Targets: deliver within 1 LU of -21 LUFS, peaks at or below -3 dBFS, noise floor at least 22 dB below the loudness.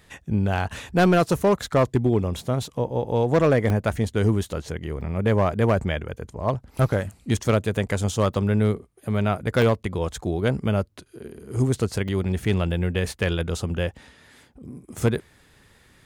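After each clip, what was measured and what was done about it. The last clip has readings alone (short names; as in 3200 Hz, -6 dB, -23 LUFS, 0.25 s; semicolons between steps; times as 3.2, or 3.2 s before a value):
clipped 0.6%; flat tops at -12.5 dBFS; dropouts 7; longest dropout 1.1 ms; loudness -24.0 LUFS; peak -12.5 dBFS; loudness target -21.0 LUFS
-> clip repair -12.5 dBFS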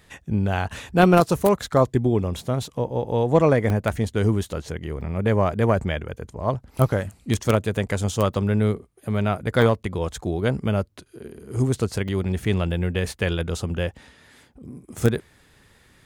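clipped 0.0%; dropouts 7; longest dropout 1.1 ms
-> interpolate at 0.78/2.4/3.7/5.01/9.62/12.08/12.71, 1.1 ms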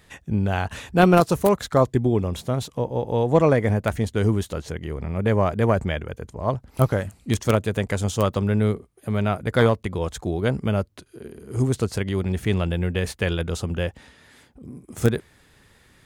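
dropouts 0; loudness -23.0 LUFS; peak -3.5 dBFS; loudness target -21.0 LUFS
-> gain +2 dB; limiter -3 dBFS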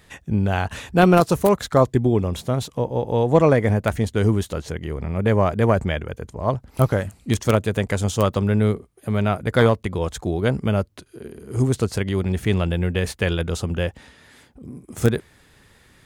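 loudness -21.5 LUFS; peak -3.0 dBFS; noise floor -55 dBFS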